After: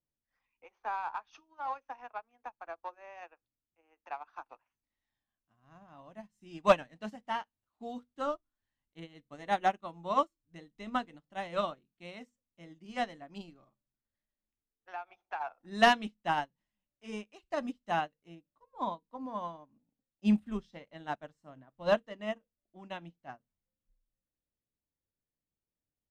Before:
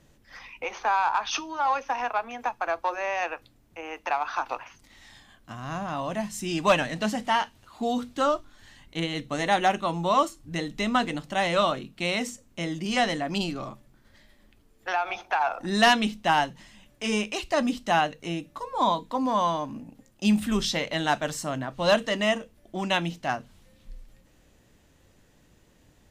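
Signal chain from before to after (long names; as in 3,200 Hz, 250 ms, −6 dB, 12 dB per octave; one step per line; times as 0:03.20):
parametric band 11,000 Hz −8 dB 2.9 octaves, from 0:18.35 −14.5 dB
expander for the loud parts 2.5 to 1, over −40 dBFS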